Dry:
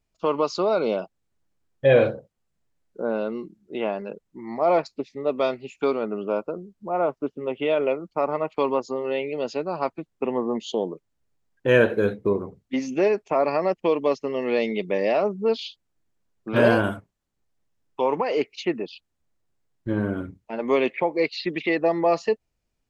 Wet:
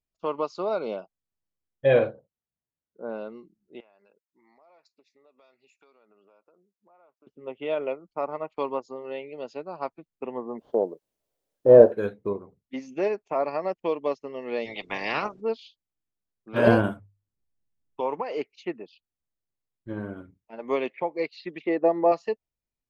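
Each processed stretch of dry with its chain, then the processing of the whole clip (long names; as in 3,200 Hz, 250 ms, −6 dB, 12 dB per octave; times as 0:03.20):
0:01.99–0:03.09: high-pass filter 48 Hz + high-shelf EQ 4,100 Hz −11.5 dB
0:03.80–0:07.27: high-pass filter 1,200 Hz 6 dB per octave + downward compressor 5 to 1, threshold −43 dBFS + notch filter 3,100 Hz, Q 7.6
0:10.58–0:11.92: variable-slope delta modulation 32 kbit/s + drawn EQ curve 170 Hz 0 dB, 620 Hz +9 dB, 2,500 Hz −23 dB + bit-depth reduction 12 bits, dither triangular
0:14.65–0:15.40: ceiling on every frequency bin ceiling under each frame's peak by 27 dB + low-pass filter 5,800 Hz
0:16.67–0:18.01: low-shelf EQ 330 Hz +10 dB + mains-hum notches 50/100/150 Hz
0:21.64–0:22.12: high-pass filter 320 Hz + spectral tilt −4.5 dB per octave + one half of a high-frequency compander decoder only
whole clip: dynamic equaliser 850 Hz, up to +3 dB, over −34 dBFS, Q 0.81; expander for the loud parts 1.5 to 1, over −33 dBFS; level −1.5 dB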